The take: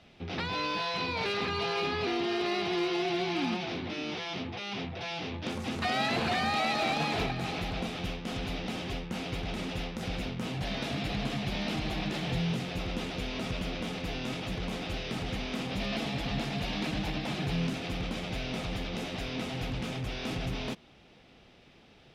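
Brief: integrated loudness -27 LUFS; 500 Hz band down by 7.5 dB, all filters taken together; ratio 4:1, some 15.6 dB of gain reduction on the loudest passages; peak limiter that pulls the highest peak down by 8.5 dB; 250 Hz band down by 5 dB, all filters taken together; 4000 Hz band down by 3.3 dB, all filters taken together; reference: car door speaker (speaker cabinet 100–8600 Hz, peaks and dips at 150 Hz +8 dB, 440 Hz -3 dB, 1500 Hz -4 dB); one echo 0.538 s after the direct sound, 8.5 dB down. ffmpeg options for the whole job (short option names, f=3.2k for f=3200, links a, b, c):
-af "equalizer=f=250:t=o:g=-8,equalizer=f=500:t=o:g=-6.5,equalizer=f=4k:t=o:g=-4,acompressor=threshold=-49dB:ratio=4,alimiter=level_in=21.5dB:limit=-24dB:level=0:latency=1,volume=-21.5dB,highpass=100,equalizer=f=150:t=q:w=4:g=8,equalizer=f=440:t=q:w=4:g=-3,equalizer=f=1.5k:t=q:w=4:g=-4,lowpass=f=8.6k:w=0.5412,lowpass=f=8.6k:w=1.3066,aecho=1:1:538:0.376,volume=26dB"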